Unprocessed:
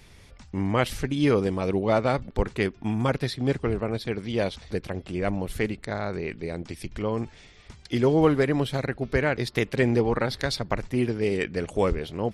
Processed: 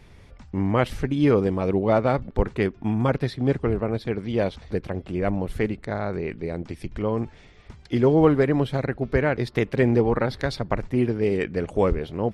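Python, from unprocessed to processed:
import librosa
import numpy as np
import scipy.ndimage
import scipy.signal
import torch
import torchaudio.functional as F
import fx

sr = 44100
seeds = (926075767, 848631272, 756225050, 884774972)

y = fx.high_shelf(x, sr, hz=2800.0, db=-12.0)
y = F.gain(torch.from_numpy(y), 3.0).numpy()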